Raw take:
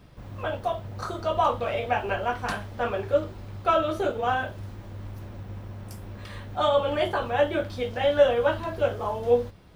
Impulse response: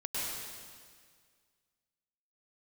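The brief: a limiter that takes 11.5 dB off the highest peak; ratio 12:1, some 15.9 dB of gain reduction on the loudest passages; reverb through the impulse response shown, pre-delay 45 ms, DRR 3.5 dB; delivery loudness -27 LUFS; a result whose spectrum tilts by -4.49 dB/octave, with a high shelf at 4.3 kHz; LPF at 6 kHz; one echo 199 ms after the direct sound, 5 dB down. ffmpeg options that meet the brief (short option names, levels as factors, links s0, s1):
-filter_complex "[0:a]lowpass=6000,highshelf=f=4300:g=7,acompressor=threshold=0.0355:ratio=12,alimiter=level_in=2.24:limit=0.0631:level=0:latency=1,volume=0.447,aecho=1:1:199:0.562,asplit=2[s0][s1];[1:a]atrim=start_sample=2205,adelay=45[s2];[s1][s2]afir=irnorm=-1:irlink=0,volume=0.376[s3];[s0][s3]amix=inputs=2:normalize=0,volume=3.35"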